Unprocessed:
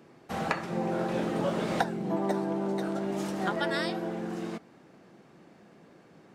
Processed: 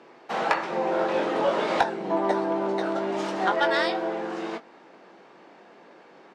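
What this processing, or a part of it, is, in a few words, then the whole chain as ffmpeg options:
intercom: -filter_complex "[0:a]highpass=410,lowpass=4700,equalizer=f=920:t=o:w=0.22:g=5,asoftclip=type=tanh:threshold=0.119,asplit=2[s0][s1];[s1]adelay=21,volume=0.355[s2];[s0][s2]amix=inputs=2:normalize=0,volume=2.37"

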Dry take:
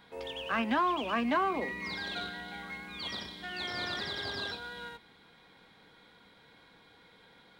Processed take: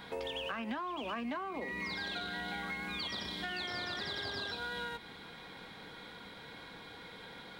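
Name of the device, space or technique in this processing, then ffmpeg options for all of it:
serial compression, peaks first: -af "acompressor=threshold=0.01:ratio=5,acompressor=threshold=0.00398:ratio=2.5,volume=2.99"

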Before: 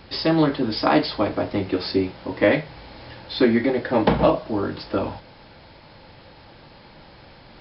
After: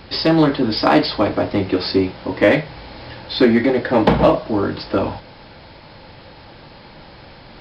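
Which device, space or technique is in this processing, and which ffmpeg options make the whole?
parallel distortion: -filter_complex "[0:a]asplit=2[s0][s1];[s1]asoftclip=type=hard:threshold=0.1,volume=0.355[s2];[s0][s2]amix=inputs=2:normalize=0,volume=1.41"

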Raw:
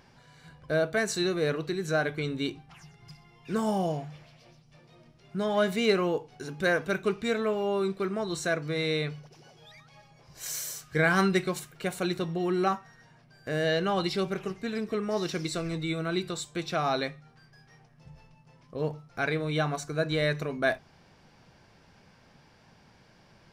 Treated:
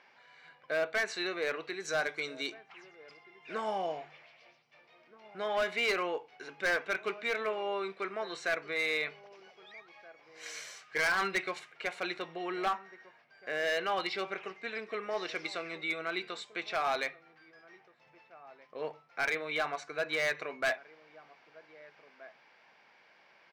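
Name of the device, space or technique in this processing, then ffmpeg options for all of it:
megaphone: -filter_complex "[0:a]asettb=1/sr,asplit=3[s0][s1][s2];[s0]atrim=end=1.804[s3];[s1]atrim=start=1.8:end=2.54,asetpts=PTS-STARTPTS,afade=t=in:d=0.004:c=qsin,afade=t=out:st=0.736:d=0.004:c=qsin,highshelf=f=4200:t=q:w=1.5:g=11.5[s4];[s2]atrim=start=2.536[s5];[s3][s4]acrossfade=d=0.004:c1=hsin:c2=qsin[s6];[s6][s5]acrossfade=d=0.004:c1=qsin:c2=hsin,highpass=560,lowpass=3700,equalizer=f=2200:t=o:w=0.58:g=7,asplit=2[s7][s8];[s8]adelay=1574,volume=0.1,highshelf=f=4000:g=-35.4[s9];[s7][s9]amix=inputs=2:normalize=0,asoftclip=type=hard:threshold=0.0668,volume=0.841"

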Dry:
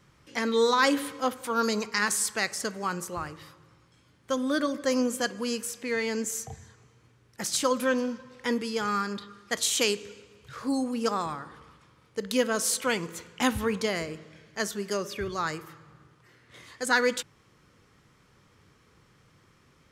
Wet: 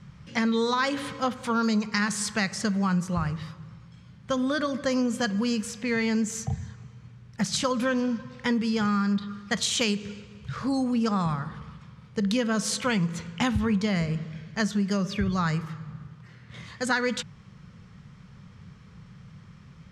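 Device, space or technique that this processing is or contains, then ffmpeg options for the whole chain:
jukebox: -af "lowpass=6000,lowshelf=f=240:t=q:w=3:g=8,acompressor=threshold=0.0447:ratio=4,volume=1.68"

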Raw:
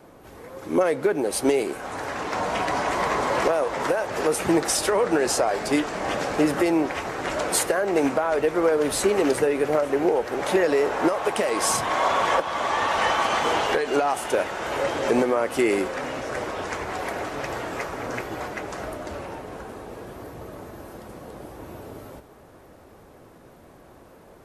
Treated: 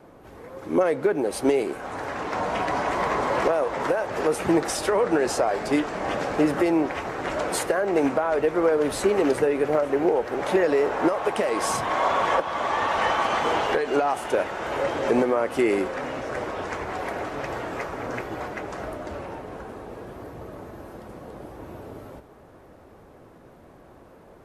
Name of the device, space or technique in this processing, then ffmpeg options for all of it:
behind a face mask: -af "highshelf=f=3500:g=-8"

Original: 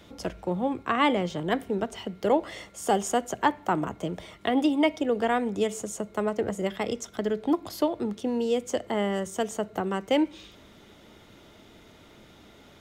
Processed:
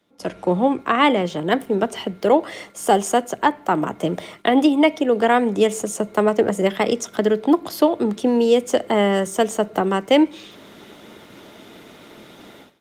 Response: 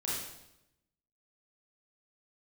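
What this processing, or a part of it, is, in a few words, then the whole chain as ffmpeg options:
video call: -af "highpass=170,dynaudnorm=f=110:g=5:m=5.31,agate=range=0.282:threshold=0.01:ratio=16:detection=peak,volume=0.75" -ar 48000 -c:a libopus -b:a 32k

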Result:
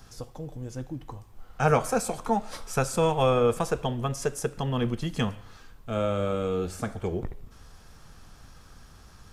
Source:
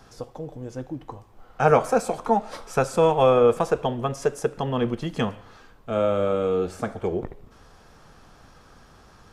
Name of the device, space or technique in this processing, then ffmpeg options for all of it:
smiley-face EQ: -af "lowshelf=f=130:g=7,equalizer=f=530:t=o:w=2.4:g=-5,highshelf=f=6200:g=8.5,volume=0.841"

